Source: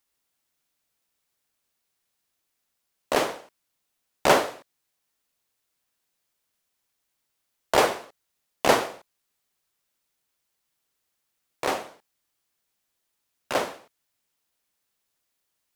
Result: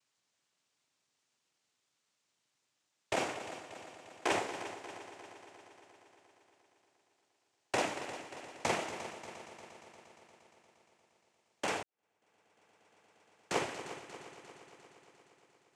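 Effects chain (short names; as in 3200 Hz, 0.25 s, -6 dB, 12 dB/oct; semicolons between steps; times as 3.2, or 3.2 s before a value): 3.34–4.31 Chebyshev band-pass 630–3100 Hz; compressor 5:1, threshold -30 dBFS, peak gain reduction 15.5 dB; noise vocoder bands 4; multi-head echo 0.117 s, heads second and third, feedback 64%, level -13 dB; 11.83–13.58 fade in quadratic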